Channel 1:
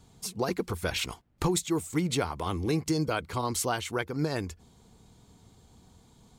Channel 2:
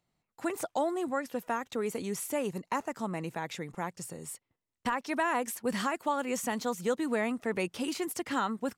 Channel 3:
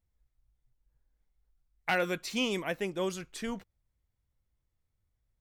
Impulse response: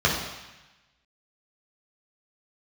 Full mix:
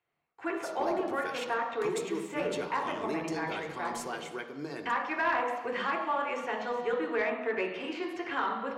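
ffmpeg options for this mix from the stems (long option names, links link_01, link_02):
-filter_complex "[0:a]highpass=frequency=210:width=0.5412,highpass=frequency=210:width=1.3066,adelay=400,volume=-8dB,asplit=2[link_01][link_02];[link_02]volume=-21dB[link_03];[1:a]acrossover=split=350 3800:gain=0.112 1 0.0794[link_04][link_05][link_06];[link_04][link_05][link_06]amix=inputs=3:normalize=0,volume=0dB,asplit=2[link_07][link_08];[link_08]volume=-14.5dB[link_09];[2:a]tremolo=f=95:d=0.889,adelay=500,volume=-10.5dB[link_10];[3:a]atrim=start_sample=2205[link_11];[link_03][link_09]amix=inputs=2:normalize=0[link_12];[link_12][link_11]afir=irnorm=-1:irlink=0[link_13];[link_01][link_07][link_10][link_13]amix=inputs=4:normalize=0,highshelf=frequency=9500:gain=-10.5,asoftclip=type=tanh:threshold=-19.5dB"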